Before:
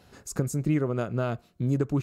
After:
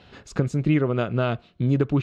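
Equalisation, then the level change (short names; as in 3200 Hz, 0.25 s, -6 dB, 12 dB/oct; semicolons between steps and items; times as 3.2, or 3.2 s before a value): synth low-pass 3300 Hz, resonance Q 2.2; +4.5 dB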